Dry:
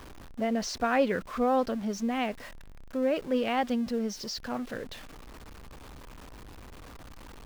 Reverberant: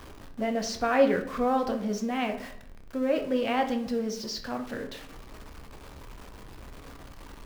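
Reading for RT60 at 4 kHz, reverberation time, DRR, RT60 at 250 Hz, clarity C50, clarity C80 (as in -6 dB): 0.40 s, 0.65 s, 4.5 dB, 0.85 s, 10.0 dB, 13.0 dB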